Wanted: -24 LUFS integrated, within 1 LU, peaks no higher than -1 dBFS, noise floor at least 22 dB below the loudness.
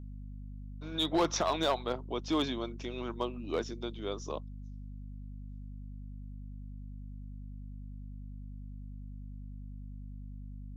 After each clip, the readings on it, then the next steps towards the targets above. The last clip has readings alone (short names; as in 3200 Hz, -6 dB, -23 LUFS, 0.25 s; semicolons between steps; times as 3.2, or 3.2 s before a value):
clipped 0.3%; flat tops at -22.0 dBFS; hum 50 Hz; harmonics up to 250 Hz; hum level -41 dBFS; loudness -38.0 LUFS; peak -22.0 dBFS; loudness target -24.0 LUFS
-> clip repair -22 dBFS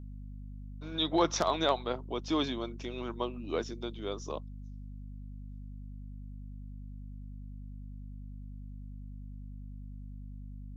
clipped 0.0%; hum 50 Hz; harmonics up to 250 Hz; hum level -41 dBFS
-> de-hum 50 Hz, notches 5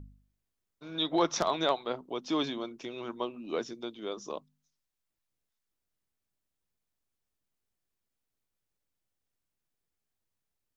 hum none; loudness -33.5 LUFS; peak -12.5 dBFS; loudness target -24.0 LUFS
-> gain +9.5 dB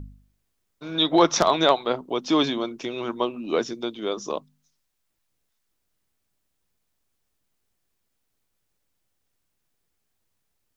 loudness -24.0 LUFS; peak -3.0 dBFS; noise floor -76 dBFS